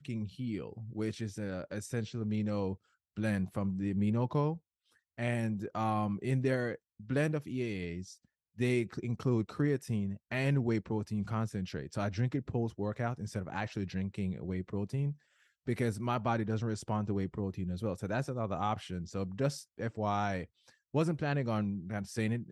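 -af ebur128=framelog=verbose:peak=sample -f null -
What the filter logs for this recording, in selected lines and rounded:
Integrated loudness:
  I:         -35.0 LUFS
  Threshold: -45.2 LUFS
Loudness range:
  LRA:         2.8 LU
  Threshold: -55.1 LUFS
  LRA low:   -36.5 LUFS
  LRA high:  -33.8 LUFS
Sample peak:
  Peak:      -18.0 dBFS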